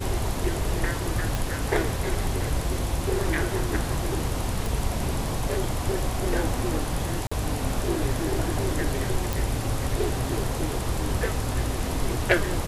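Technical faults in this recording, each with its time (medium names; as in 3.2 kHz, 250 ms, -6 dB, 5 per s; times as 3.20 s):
1.35 s: pop
4.66 s: pop
7.27–7.32 s: dropout 45 ms
9.33 s: pop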